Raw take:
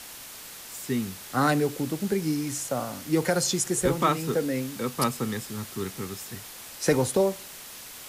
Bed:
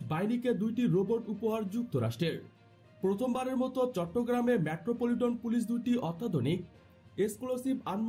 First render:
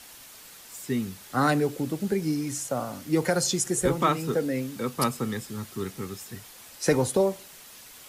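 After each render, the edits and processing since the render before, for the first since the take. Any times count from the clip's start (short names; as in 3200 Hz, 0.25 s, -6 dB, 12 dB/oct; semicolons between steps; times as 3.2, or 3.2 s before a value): denoiser 6 dB, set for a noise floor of -43 dBFS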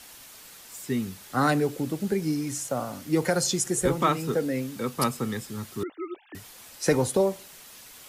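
2.42–2.91 sample gate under -55 dBFS; 5.83–6.35 sine-wave speech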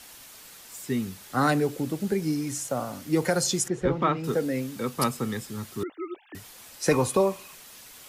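3.68–4.24 air absorption 250 m; 6.91–7.55 small resonant body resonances 1100/2500 Hz, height 15 dB, ringing for 35 ms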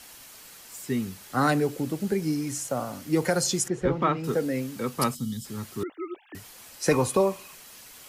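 5.15–5.45 spectral gain 290–2900 Hz -19 dB; notch 3600 Hz, Q 24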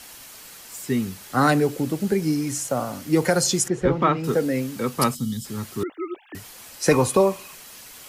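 gain +4.5 dB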